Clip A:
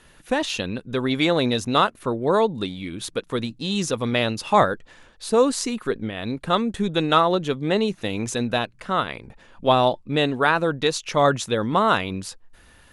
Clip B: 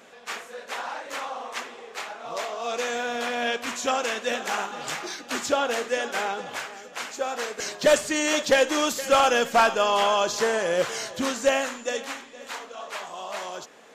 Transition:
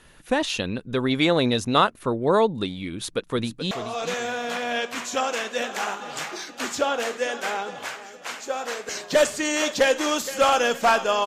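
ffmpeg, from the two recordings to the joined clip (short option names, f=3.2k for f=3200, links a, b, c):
-filter_complex "[0:a]apad=whole_dur=11.26,atrim=end=11.26,atrim=end=3.712[a];[1:a]atrim=start=2.418:end=9.97[b];[a][b]acrossfade=d=0.004:c1=hsin:c2=hsin,asplit=2[c][d];[d]afade=t=in:st=2.92:d=0.01,afade=t=out:st=3.71:d=0.01,aecho=0:1:430|860|1290|1720:0.298538|0.104488|0.0365709|0.0127998[e];[c][e]amix=inputs=2:normalize=0"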